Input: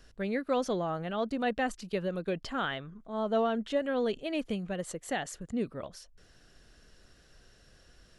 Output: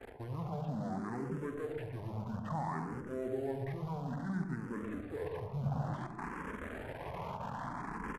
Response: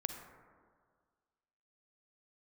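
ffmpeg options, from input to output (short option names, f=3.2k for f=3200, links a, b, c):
-filter_complex "[0:a]aeval=exprs='val(0)+0.5*0.0237*sgn(val(0))':c=same,agate=range=-33dB:threshold=-34dB:ratio=3:detection=peak,areverse,acompressor=threshold=-44dB:ratio=5,areverse,alimiter=level_in=17.5dB:limit=-24dB:level=0:latency=1:release=19,volume=-17.5dB,highpass=150,equalizer=f=170:t=q:w=4:g=-9,equalizer=f=550:t=q:w=4:g=-8,equalizer=f=920:t=q:w=4:g=3,lowpass=f=2.9k:w=0.5412,lowpass=f=2.9k:w=1.3066,asplit=2[a][b];[b]acrusher=bits=6:dc=4:mix=0:aa=0.000001,volume=-11dB[c];[a][c]amix=inputs=2:normalize=0,asplit=2[d][e];[e]adelay=121,lowpass=f=940:p=1,volume=-4dB,asplit=2[f][g];[g]adelay=121,lowpass=f=940:p=1,volume=0.46,asplit=2[h][i];[i]adelay=121,lowpass=f=940:p=1,volume=0.46,asplit=2[j][k];[k]adelay=121,lowpass=f=940:p=1,volume=0.46,asplit=2[l][m];[m]adelay=121,lowpass=f=940:p=1,volume=0.46,asplit=2[n][o];[o]adelay=121,lowpass=f=940:p=1,volume=0.46[p];[d][f][h][j][l][n][p]amix=inputs=7:normalize=0[q];[1:a]atrim=start_sample=2205,afade=t=out:st=0.28:d=0.01,atrim=end_sample=12789[r];[q][r]afir=irnorm=-1:irlink=0,asetrate=26222,aresample=44100,atempo=1.68179,asplit=2[s][t];[t]afreqshift=0.59[u];[s][u]amix=inputs=2:normalize=1,volume=12.5dB"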